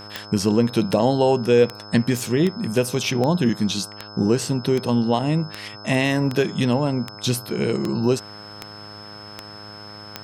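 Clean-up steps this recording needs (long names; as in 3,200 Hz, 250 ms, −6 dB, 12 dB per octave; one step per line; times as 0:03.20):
click removal
hum removal 103.9 Hz, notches 15
notch filter 5,200 Hz, Q 30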